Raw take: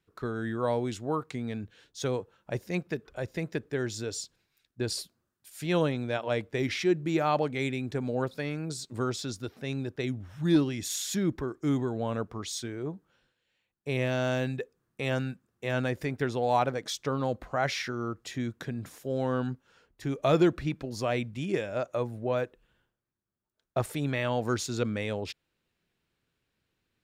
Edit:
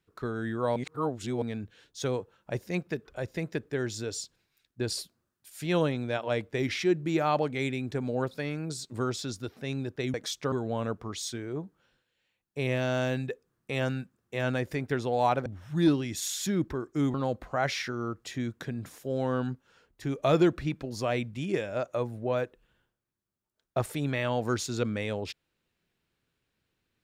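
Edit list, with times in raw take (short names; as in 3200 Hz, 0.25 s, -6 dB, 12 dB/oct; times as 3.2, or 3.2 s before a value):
0.76–1.42 reverse
10.14–11.82 swap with 16.76–17.14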